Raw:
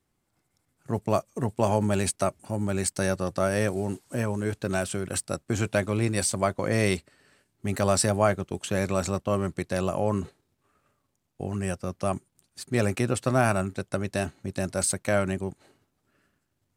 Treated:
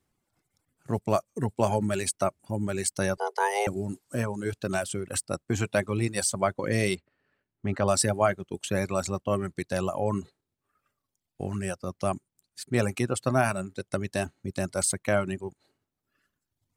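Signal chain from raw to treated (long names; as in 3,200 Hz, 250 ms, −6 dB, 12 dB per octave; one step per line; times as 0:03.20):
0:03.17–0:03.67: frequency shifter +300 Hz
reverb reduction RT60 1.3 s
0:06.95–0:07.88: low-pass filter 2,600 Hz 12 dB per octave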